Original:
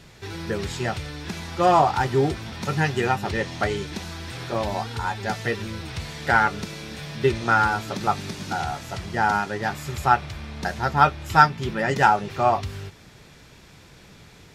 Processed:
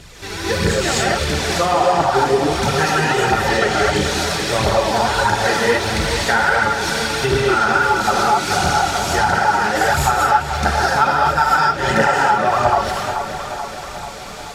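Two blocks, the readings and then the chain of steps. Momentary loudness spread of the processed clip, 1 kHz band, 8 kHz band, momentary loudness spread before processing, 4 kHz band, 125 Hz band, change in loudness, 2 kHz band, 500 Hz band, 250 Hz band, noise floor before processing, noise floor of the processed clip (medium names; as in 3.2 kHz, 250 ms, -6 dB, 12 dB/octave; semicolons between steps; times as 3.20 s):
7 LU, +6.5 dB, +15.5 dB, 15 LU, +12.5 dB, +4.5 dB, +7.0 dB, +8.0 dB, +8.5 dB, +6.0 dB, -49 dBFS, -31 dBFS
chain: graphic EQ 125/250/8000 Hz -4/-4/+5 dB; gated-style reverb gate 280 ms rising, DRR -7 dB; compression, threshold -20 dBFS, peak gain reduction 13.5 dB; phaser 1.5 Hz, delay 4.9 ms, feedback 50%; on a send: tape echo 434 ms, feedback 66%, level -7.5 dB, low-pass 3.5 kHz; on the sum: trim +5.5 dB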